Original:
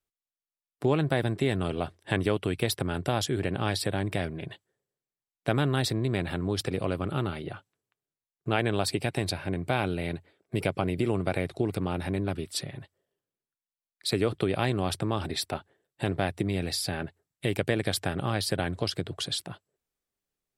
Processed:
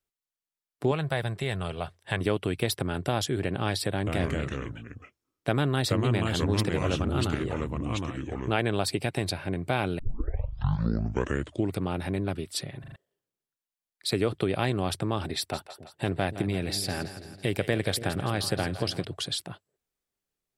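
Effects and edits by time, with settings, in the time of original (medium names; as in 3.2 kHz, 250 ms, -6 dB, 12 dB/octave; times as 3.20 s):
0.91–2.21 s: peaking EQ 290 Hz -13 dB 0.9 oct
3.93–8.54 s: ever faster or slower copies 136 ms, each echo -3 st, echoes 2
9.99 s: tape start 1.79 s
12.80 s: stutter in place 0.04 s, 4 plays
15.37–19.05 s: two-band feedback delay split 480 Hz, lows 283 ms, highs 165 ms, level -12 dB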